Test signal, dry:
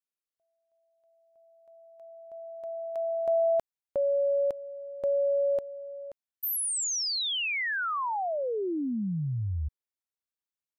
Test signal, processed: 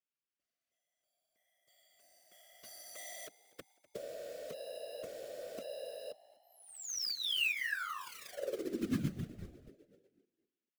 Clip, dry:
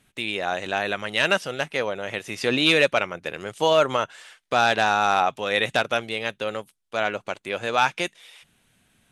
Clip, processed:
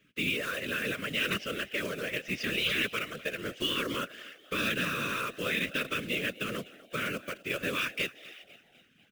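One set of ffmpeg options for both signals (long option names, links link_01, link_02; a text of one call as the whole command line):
ffmpeg -i in.wav -filter_complex "[0:a]afftfilt=real='re*lt(hypot(re,im),0.398)':imag='im*lt(hypot(re,im),0.398)':win_size=1024:overlap=0.75,acontrast=21,alimiter=limit=-10dB:level=0:latency=1:release=141,highpass=210,equalizer=frequency=220:width_type=q:width=4:gain=9,equalizer=frequency=360:width_type=q:width=4:gain=-3,equalizer=frequency=870:width_type=q:width=4:gain=4,equalizer=frequency=1200:width_type=q:width=4:gain=-4,equalizer=frequency=2800:width_type=q:width=4:gain=4,equalizer=frequency=4100:width_type=q:width=4:gain=-9,lowpass=frequency=5200:width=0.5412,lowpass=frequency=5200:width=1.3066,acrusher=bits=3:mode=log:mix=0:aa=0.000001,asuperstop=centerf=790:order=8:qfactor=1.4,asplit=5[link_01][link_02][link_03][link_04][link_05];[link_02]adelay=249,afreqshift=59,volume=-20dB[link_06];[link_03]adelay=498,afreqshift=118,volume=-25.4dB[link_07];[link_04]adelay=747,afreqshift=177,volume=-30.7dB[link_08];[link_05]adelay=996,afreqshift=236,volume=-36.1dB[link_09];[link_01][link_06][link_07][link_08][link_09]amix=inputs=5:normalize=0,afftfilt=real='hypot(re,im)*cos(2*PI*random(0))':imag='hypot(re,im)*sin(2*PI*random(1))':win_size=512:overlap=0.75,volume=-1dB" out.wav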